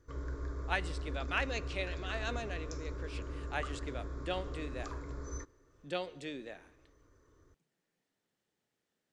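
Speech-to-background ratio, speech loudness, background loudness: 2.5 dB, -40.0 LUFS, -42.5 LUFS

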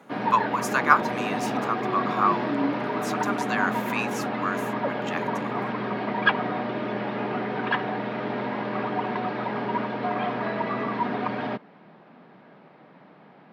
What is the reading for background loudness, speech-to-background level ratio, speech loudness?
-28.0 LUFS, 0.5 dB, -27.5 LUFS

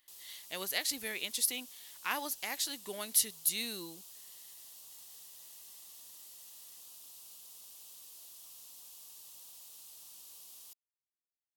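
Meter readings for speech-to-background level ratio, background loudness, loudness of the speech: 15.5 dB, -49.5 LUFS, -34.0 LUFS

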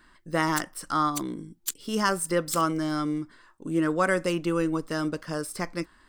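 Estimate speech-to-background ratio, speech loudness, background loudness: 9.0 dB, -28.0 LUFS, -37.0 LUFS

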